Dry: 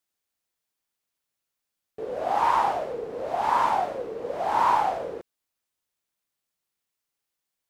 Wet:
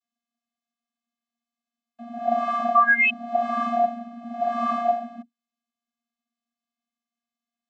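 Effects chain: painted sound rise, 2.74–3.1, 1100–2700 Hz -16 dBFS; vocoder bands 32, square 235 Hz

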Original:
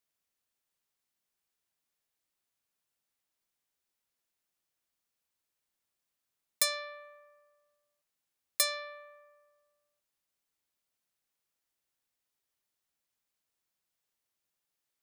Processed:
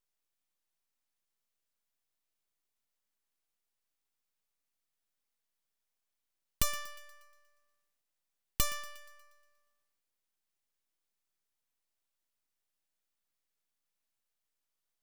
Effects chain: full-wave rectifier; thinning echo 0.119 s, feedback 52%, high-pass 330 Hz, level -16 dB

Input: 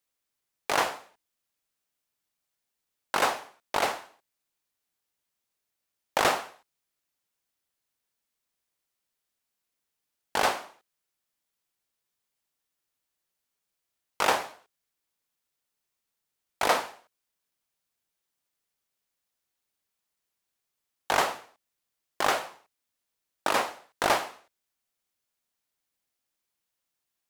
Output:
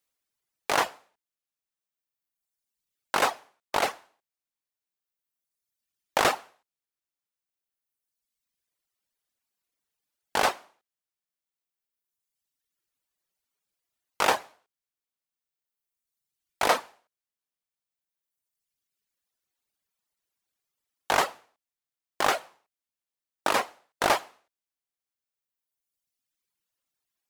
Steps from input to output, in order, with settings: reverb removal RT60 1.9 s; gain +1.5 dB

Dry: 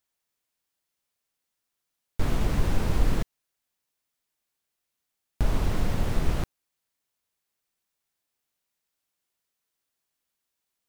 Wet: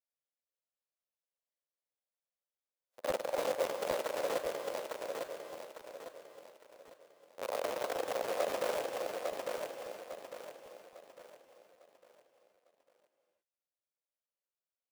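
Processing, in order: half-waves squared off; spectral noise reduction 22 dB; limiter -20 dBFS, peak gain reduction 11 dB; sample leveller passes 2; formant shift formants -4 st; soft clip -33 dBFS, distortion -13 dB; tempo 0.73×; resonant high-pass 540 Hz, resonance Q 4.9; feedback echo 0.852 s, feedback 38%, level -3.5 dB; reverb, pre-delay 3 ms, DRR 7 dB; crackling interface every 0.27 s, samples 512, repeat, from 0.66

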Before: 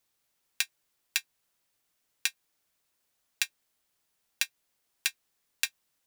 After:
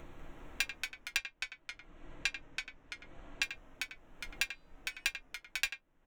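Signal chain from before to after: Wiener smoothing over 9 samples; upward compressor, threshold -37 dBFS; tilt -3.5 dB/oct; speakerphone echo 90 ms, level -9 dB; reverb RT60 0.10 s, pre-delay 3 ms, DRR 5.5 dB; echoes that change speed 0.195 s, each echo -1 st, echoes 2, each echo -6 dB; 1.17–3.43 LPF 7300 Hz 12 dB/oct; 4.44–5.09 de-hum 362.7 Hz, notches 27; gain +1 dB

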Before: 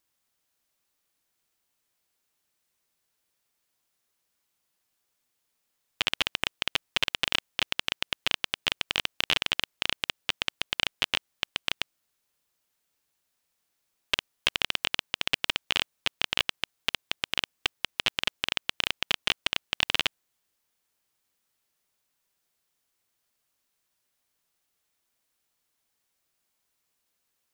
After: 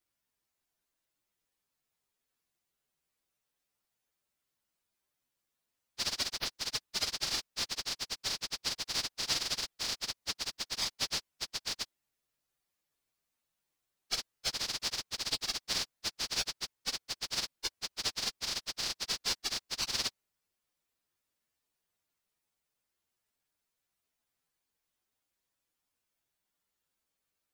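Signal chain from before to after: inharmonic rescaling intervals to 119%

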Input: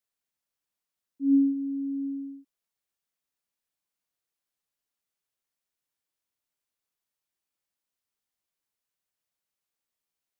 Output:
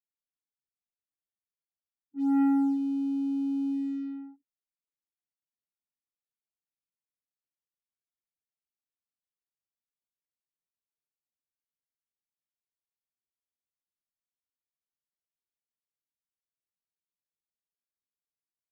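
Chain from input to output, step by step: plain phase-vocoder stretch 1.8×; sample leveller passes 2; low-pass opened by the level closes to 310 Hz, open at -26 dBFS; gain -3 dB

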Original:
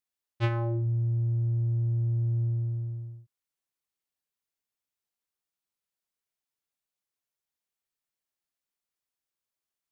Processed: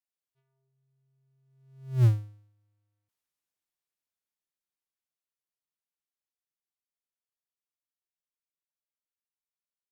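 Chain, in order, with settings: zero-crossing step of -34.5 dBFS; Doppler pass-by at 2.05, 44 m/s, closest 2.7 m; upward expander 2.5:1, over -46 dBFS; gain +8.5 dB

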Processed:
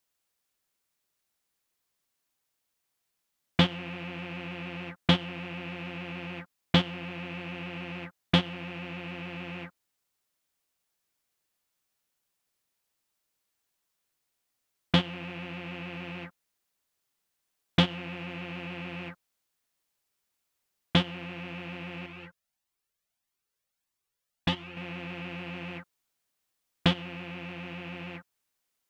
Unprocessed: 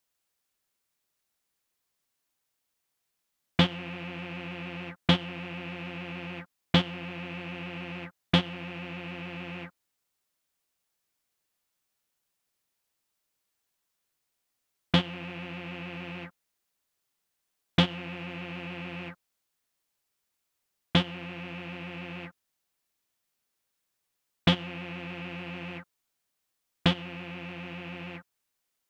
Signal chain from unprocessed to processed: 22.06–24.77 cascading flanger rising 1.6 Hz

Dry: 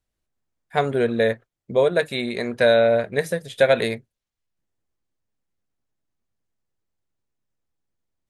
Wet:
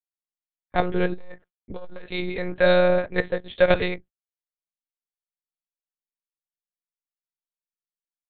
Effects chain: gate -42 dBFS, range -35 dB; monotone LPC vocoder at 8 kHz 180 Hz; 1.13–2.05 core saturation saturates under 240 Hz; gain -1 dB

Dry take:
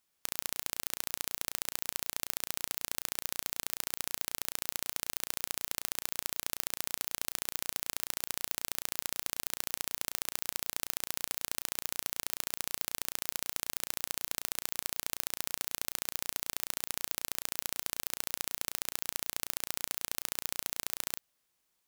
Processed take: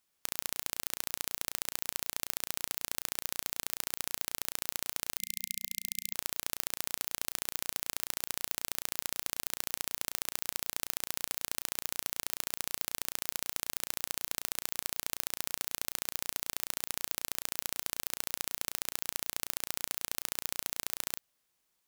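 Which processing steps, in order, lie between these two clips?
spectral delete 5.19–6.14, 210–2100 Hz

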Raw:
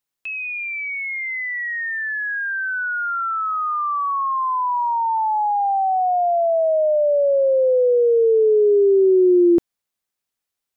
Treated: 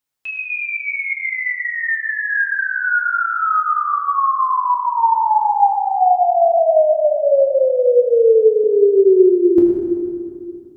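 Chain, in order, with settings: 6.6–8.64 low shelf 210 Hz -12 dB; reverb RT60 2.3 s, pre-delay 5 ms, DRR -2 dB

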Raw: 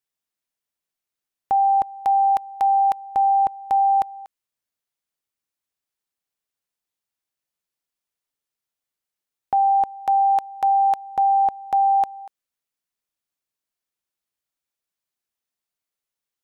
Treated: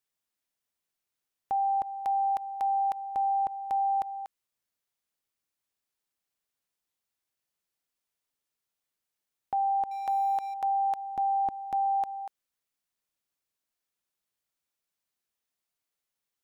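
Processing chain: 9.91–10.54 G.711 law mismatch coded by mu; 11.15–11.86 resonant low shelf 400 Hz +6 dB, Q 1.5; limiter -23.5 dBFS, peak gain reduction 10.5 dB

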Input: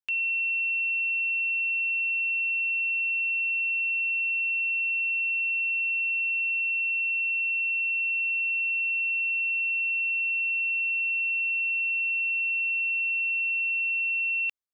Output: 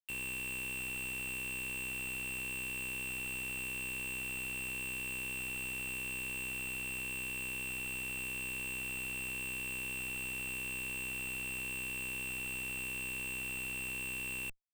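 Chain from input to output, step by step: limiter -32.5 dBFS, peak gain reduction 8.5 dB; AM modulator 64 Hz, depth 95%; Schmitt trigger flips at -59 dBFS

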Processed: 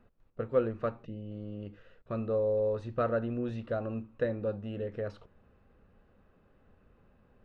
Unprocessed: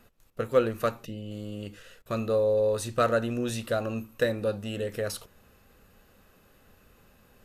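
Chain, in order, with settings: tape spacing loss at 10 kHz 43 dB; gain -2.5 dB

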